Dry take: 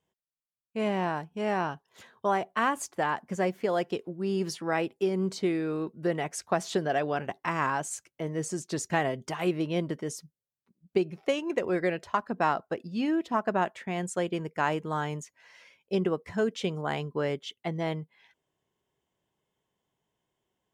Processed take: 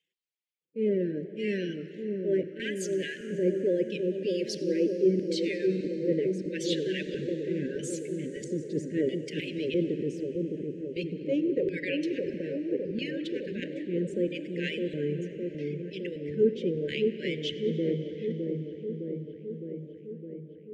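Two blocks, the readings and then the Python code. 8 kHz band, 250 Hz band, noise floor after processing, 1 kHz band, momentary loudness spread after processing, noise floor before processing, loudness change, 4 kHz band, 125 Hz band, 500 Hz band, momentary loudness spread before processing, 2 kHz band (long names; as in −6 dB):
−5.5 dB, +2.0 dB, −46 dBFS, below −40 dB, 9 LU, below −85 dBFS, −0.5 dB, +1.5 dB, 0.0 dB, +2.0 dB, 6 LU, −5.0 dB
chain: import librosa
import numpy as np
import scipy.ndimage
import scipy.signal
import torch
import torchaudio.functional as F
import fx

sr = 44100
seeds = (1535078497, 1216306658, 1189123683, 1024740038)

y = fx.spec_quant(x, sr, step_db=15)
y = scipy.signal.sosfilt(scipy.signal.butter(2, 100.0, 'highpass', fs=sr, output='sos'), y)
y = fx.dereverb_blind(y, sr, rt60_s=0.58)
y = fx.wow_flutter(y, sr, seeds[0], rate_hz=2.1, depth_cents=22.0)
y = fx.low_shelf(y, sr, hz=270.0, db=8.5)
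y = fx.transient(y, sr, attack_db=-10, sustain_db=3)
y = fx.band_shelf(y, sr, hz=980.0, db=-11.0, octaves=1.7)
y = fx.filter_lfo_bandpass(y, sr, shape='square', hz=0.77, low_hz=470.0, high_hz=2500.0, q=1.2)
y = fx.brickwall_bandstop(y, sr, low_hz=610.0, high_hz=1500.0)
y = fx.echo_wet_lowpass(y, sr, ms=611, feedback_pct=71, hz=590.0, wet_db=-3.0)
y = fx.rev_plate(y, sr, seeds[1], rt60_s=4.7, hf_ratio=0.8, predelay_ms=0, drr_db=11.5)
y = fx.echo_warbled(y, sr, ms=96, feedback_pct=70, rate_hz=2.8, cents=212, wet_db=-22)
y = y * librosa.db_to_amplitude(7.0)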